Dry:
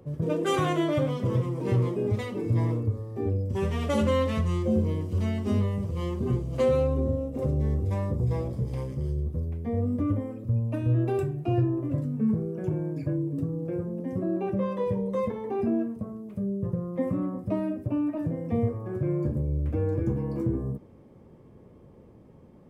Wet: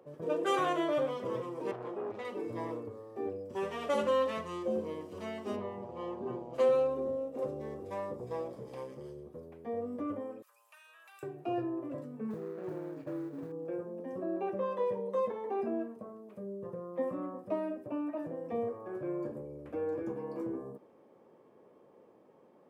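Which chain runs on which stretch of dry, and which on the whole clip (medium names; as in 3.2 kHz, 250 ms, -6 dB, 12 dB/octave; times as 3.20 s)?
1.71–2.25 s: valve stage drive 27 dB, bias 0.4 + low-pass 2.9 kHz 6 dB/octave
5.55–6.53 s: low-pass 1.6 kHz 6 dB/octave + mains buzz 120 Hz, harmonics 8, -38 dBFS -6 dB/octave
10.42–11.23 s: high-pass 1.1 kHz 24 dB/octave + tilt EQ +4 dB/octave + compression 4:1, threshold -52 dBFS
12.30–13.52 s: median filter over 41 samples + modulation noise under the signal 32 dB + treble shelf 3.2 kHz -7.5 dB
whole clip: high-pass 480 Hz 12 dB/octave; treble shelf 2.5 kHz -8.5 dB; band-stop 2.1 kHz, Q 21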